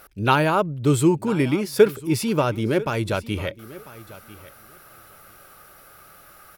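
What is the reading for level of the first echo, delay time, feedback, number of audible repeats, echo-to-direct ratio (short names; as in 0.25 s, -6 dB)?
-18.5 dB, 0.996 s, 16%, 2, -18.5 dB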